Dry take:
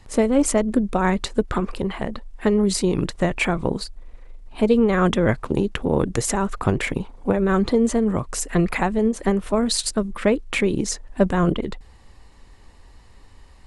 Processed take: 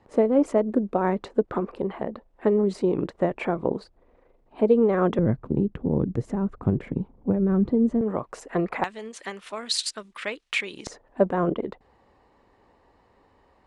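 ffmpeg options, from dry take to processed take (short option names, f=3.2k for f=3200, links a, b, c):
-af "asetnsamples=n=441:p=0,asendcmd='5.19 bandpass f 170;8.01 bandpass f 650;8.84 bandpass f 3200;10.87 bandpass f 570',bandpass=f=480:t=q:w=0.83:csg=0"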